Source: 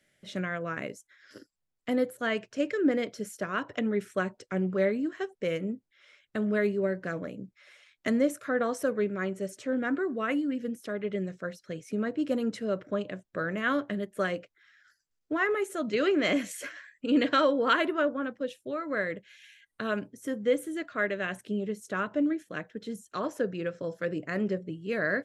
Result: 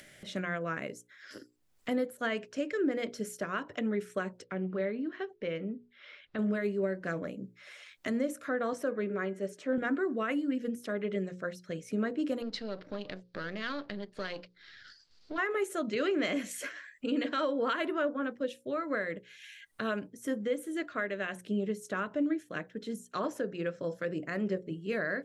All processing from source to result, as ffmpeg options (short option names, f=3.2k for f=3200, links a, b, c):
-filter_complex "[0:a]asettb=1/sr,asplit=3[a][b][c];[a]atrim=end=4.444[d];[b]atrim=start=4.44:end=6.39,asetpts=PTS-STARTPTS,afade=t=in:d=0.004:c=qsin,afade=t=out:st=1.946:d=0.004:c=qsin,lowpass=f=4.4k:w=0.5412,lowpass=f=4.4k:w=1.3066,acompressor=threshold=-38dB:ratio=1.5:attack=3.2:release=140:knee=1:detection=peak[e];[c]atrim=start=6.386[f];[d][e]acrossfade=d=0.004:c1=hsin:c2=qsin[g];[g][f]acrossfade=d=0.004:c1=qsin:c2=hsin,asettb=1/sr,asplit=3[h][i][j];[h]atrim=end=8.734[k];[i]atrim=start=8.73:end=9.78,asetpts=PTS-STARTPTS,afade=t=in:d=0.004:c=qsin,afade=t=out:st=1.046:d=0.004:c=qsin,highpass=190,highshelf=f=4.7k:g=-9.5,bandreject=f=412.4:t=h:w=4,bandreject=f=824.8:t=h:w=4,bandreject=f=1.2372k:t=h:w=4,bandreject=f=1.6496k:t=h:w=4,bandreject=f=2.062k:t=h:w=4[l];[j]atrim=start=9.776[m];[k][l]acrossfade=d=0.004:c1=hsin:c2=qsin[n];[n][m]acrossfade=d=0.004:c1=qsin:c2=hsin,asettb=1/sr,asplit=3[o][p][q];[o]atrim=end=12.424[r];[p]atrim=start=12.42:end=15.38,asetpts=PTS-STARTPTS,afade=t=in:d=0.004:c=qsin,afade=t=out:st=2.956:d=0.004:c=qsin,aeval=exprs='if(lt(val(0),0),0.447*val(0),val(0))':c=same,acompressor=threshold=-35dB:ratio=2.5:attack=3.2:release=140:knee=1:detection=peak,lowpass=f=4.5k:t=q:w=5[s];[q]atrim=start=15.376[t];[r][s]acrossfade=d=0.004:c1=hsin:c2=qsin[u];[u][t]acrossfade=d=0.004:c1=qsin:c2=hsin,acompressor=mode=upward:threshold=-42dB:ratio=2.5,alimiter=limit=-22dB:level=0:latency=1:release=254,bandreject=f=60:t=h:w=6,bandreject=f=120:t=h:w=6,bandreject=f=180:t=h:w=6,bandreject=f=240:t=h:w=6,bandreject=f=300:t=h:w=6,bandreject=f=360:t=h:w=6,bandreject=f=420:t=h:w=6,bandreject=f=480:t=h:w=6,bandreject=f=540:t=h:w=6"